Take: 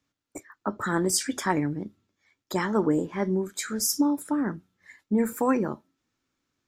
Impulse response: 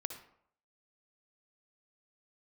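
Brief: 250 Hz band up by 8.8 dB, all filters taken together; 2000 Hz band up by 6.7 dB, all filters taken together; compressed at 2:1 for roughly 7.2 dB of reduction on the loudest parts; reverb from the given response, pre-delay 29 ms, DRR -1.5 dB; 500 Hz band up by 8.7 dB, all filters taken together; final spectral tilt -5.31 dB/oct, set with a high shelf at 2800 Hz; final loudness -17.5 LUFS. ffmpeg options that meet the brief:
-filter_complex "[0:a]equalizer=f=250:t=o:g=8.5,equalizer=f=500:t=o:g=7.5,equalizer=f=2k:t=o:g=9,highshelf=f=2.8k:g=-3.5,acompressor=threshold=-22dB:ratio=2,asplit=2[a][b];[1:a]atrim=start_sample=2205,adelay=29[c];[b][c]afir=irnorm=-1:irlink=0,volume=2.5dB[d];[a][d]amix=inputs=2:normalize=0,volume=3.5dB"

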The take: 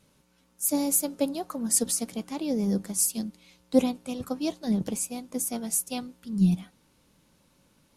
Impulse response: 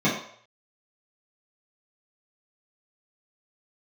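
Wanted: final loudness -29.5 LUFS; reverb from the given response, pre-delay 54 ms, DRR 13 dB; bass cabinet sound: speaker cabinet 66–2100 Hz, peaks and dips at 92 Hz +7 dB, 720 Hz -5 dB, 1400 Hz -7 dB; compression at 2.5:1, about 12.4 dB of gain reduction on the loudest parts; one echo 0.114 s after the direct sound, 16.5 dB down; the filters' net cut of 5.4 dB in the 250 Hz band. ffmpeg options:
-filter_complex "[0:a]equalizer=f=250:t=o:g=-7,acompressor=threshold=-38dB:ratio=2.5,aecho=1:1:114:0.15,asplit=2[a][b];[1:a]atrim=start_sample=2205,adelay=54[c];[b][c]afir=irnorm=-1:irlink=0,volume=-29dB[d];[a][d]amix=inputs=2:normalize=0,highpass=f=66:w=0.5412,highpass=f=66:w=1.3066,equalizer=f=92:t=q:w=4:g=7,equalizer=f=720:t=q:w=4:g=-5,equalizer=f=1.4k:t=q:w=4:g=-7,lowpass=f=2.1k:w=0.5412,lowpass=f=2.1k:w=1.3066,volume=11.5dB"

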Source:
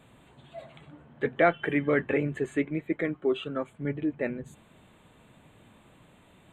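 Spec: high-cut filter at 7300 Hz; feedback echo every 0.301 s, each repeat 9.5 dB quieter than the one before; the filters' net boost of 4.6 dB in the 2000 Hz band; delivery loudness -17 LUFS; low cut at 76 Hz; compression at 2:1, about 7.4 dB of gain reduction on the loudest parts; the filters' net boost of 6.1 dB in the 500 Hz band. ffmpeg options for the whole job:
-af "highpass=76,lowpass=7.3k,equalizer=f=500:t=o:g=7.5,equalizer=f=2k:t=o:g=5,acompressor=threshold=-25dB:ratio=2,aecho=1:1:301|602|903|1204:0.335|0.111|0.0365|0.012,volume=11.5dB"

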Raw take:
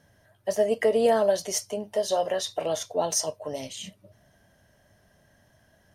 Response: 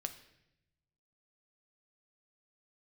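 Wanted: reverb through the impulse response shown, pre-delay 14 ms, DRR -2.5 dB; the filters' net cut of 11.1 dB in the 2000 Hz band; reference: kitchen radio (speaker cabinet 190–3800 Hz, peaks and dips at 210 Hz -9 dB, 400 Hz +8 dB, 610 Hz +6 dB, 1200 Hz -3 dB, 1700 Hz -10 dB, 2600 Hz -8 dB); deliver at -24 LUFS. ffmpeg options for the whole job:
-filter_complex "[0:a]equalizer=f=2k:t=o:g=-4.5,asplit=2[a][b];[1:a]atrim=start_sample=2205,adelay=14[c];[b][c]afir=irnorm=-1:irlink=0,volume=4dB[d];[a][d]amix=inputs=2:normalize=0,highpass=190,equalizer=f=210:t=q:w=4:g=-9,equalizer=f=400:t=q:w=4:g=8,equalizer=f=610:t=q:w=4:g=6,equalizer=f=1.2k:t=q:w=4:g=-3,equalizer=f=1.7k:t=q:w=4:g=-10,equalizer=f=2.6k:t=q:w=4:g=-8,lowpass=f=3.8k:w=0.5412,lowpass=f=3.8k:w=1.3066,volume=-5.5dB"

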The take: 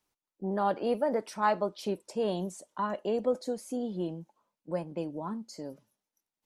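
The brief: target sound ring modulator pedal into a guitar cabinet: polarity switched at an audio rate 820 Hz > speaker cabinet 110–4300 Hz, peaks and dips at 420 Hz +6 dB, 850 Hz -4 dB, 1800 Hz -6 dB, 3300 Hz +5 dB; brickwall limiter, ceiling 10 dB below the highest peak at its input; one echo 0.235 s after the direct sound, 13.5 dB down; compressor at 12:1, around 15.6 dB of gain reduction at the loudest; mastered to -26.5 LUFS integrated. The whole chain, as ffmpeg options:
-af "acompressor=threshold=-38dB:ratio=12,alimiter=level_in=12dB:limit=-24dB:level=0:latency=1,volume=-12dB,aecho=1:1:235:0.211,aeval=exprs='val(0)*sgn(sin(2*PI*820*n/s))':c=same,highpass=110,equalizer=f=420:t=q:w=4:g=6,equalizer=f=850:t=q:w=4:g=-4,equalizer=f=1.8k:t=q:w=4:g=-6,equalizer=f=3.3k:t=q:w=4:g=5,lowpass=f=4.3k:w=0.5412,lowpass=f=4.3k:w=1.3066,volume=19dB"

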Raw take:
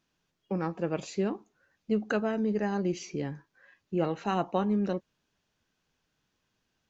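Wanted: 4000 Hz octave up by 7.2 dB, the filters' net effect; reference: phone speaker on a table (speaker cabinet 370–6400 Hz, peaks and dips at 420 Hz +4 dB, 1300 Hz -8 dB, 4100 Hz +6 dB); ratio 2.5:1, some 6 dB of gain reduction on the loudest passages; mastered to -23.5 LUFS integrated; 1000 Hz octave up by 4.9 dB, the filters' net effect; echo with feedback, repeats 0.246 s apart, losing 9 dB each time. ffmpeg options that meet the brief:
-af "equalizer=f=1k:t=o:g=8,equalizer=f=4k:t=o:g=5.5,acompressor=threshold=-29dB:ratio=2.5,highpass=f=370:w=0.5412,highpass=f=370:w=1.3066,equalizer=f=420:t=q:w=4:g=4,equalizer=f=1.3k:t=q:w=4:g=-8,equalizer=f=4.1k:t=q:w=4:g=6,lowpass=f=6.4k:w=0.5412,lowpass=f=6.4k:w=1.3066,aecho=1:1:246|492|738|984:0.355|0.124|0.0435|0.0152,volume=12dB"

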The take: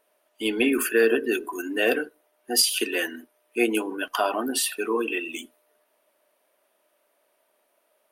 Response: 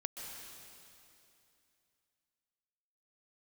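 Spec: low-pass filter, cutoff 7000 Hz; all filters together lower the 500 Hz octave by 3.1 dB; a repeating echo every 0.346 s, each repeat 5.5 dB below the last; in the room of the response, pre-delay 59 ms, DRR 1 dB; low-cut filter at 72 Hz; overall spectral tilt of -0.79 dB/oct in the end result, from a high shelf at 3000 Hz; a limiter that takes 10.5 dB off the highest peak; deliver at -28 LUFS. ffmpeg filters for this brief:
-filter_complex "[0:a]highpass=72,lowpass=7k,equalizer=f=500:t=o:g=-4,highshelf=f=3k:g=8,alimiter=limit=-14dB:level=0:latency=1,aecho=1:1:346|692|1038|1384|1730|2076|2422:0.531|0.281|0.149|0.079|0.0419|0.0222|0.0118,asplit=2[a][b];[1:a]atrim=start_sample=2205,adelay=59[c];[b][c]afir=irnorm=-1:irlink=0,volume=-0.5dB[d];[a][d]amix=inputs=2:normalize=0,volume=-5dB"

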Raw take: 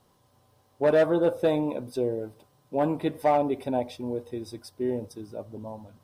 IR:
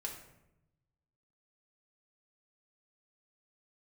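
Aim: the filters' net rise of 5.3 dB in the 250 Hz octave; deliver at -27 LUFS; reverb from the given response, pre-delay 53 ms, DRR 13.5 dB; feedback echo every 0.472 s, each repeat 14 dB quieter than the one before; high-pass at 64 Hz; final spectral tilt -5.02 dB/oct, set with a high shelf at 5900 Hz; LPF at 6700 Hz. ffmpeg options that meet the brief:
-filter_complex "[0:a]highpass=64,lowpass=6.7k,equalizer=f=250:t=o:g=7,highshelf=f=5.9k:g=5.5,aecho=1:1:472|944:0.2|0.0399,asplit=2[a][b];[1:a]atrim=start_sample=2205,adelay=53[c];[b][c]afir=irnorm=-1:irlink=0,volume=-13dB[d];[a][d]amix=inputs=2:normalize=0,volume=-2.5dB"

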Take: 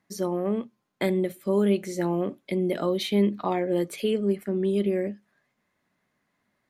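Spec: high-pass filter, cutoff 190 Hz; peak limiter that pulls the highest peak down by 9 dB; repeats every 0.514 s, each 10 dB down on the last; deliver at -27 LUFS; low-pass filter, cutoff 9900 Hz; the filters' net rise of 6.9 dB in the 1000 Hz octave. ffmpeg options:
-af "highpass=190,lowpass=9.9k,equalizer=f=1k:t=o:g=9,alimiter=limit=-17dB:level=0:latency=1,aecho=1:1:514|1028|1542|2056:0.316|0.101|0.0324|0.0104,volume=0.5dB"

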